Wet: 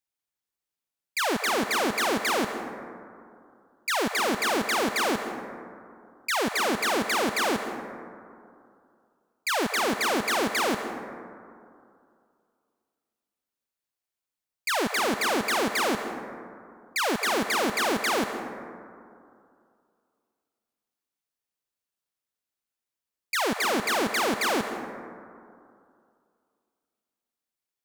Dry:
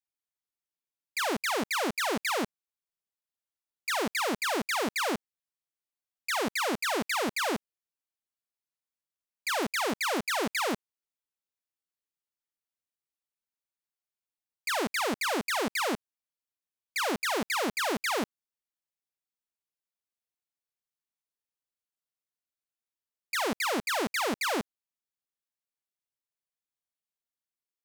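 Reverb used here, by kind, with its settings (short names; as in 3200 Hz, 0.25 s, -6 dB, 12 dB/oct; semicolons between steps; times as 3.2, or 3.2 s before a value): plate-style reverb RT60 2.4 s, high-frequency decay 0.3×, pre-delay 0.115 s, DRR 7.5 dB; gain +3.5 dB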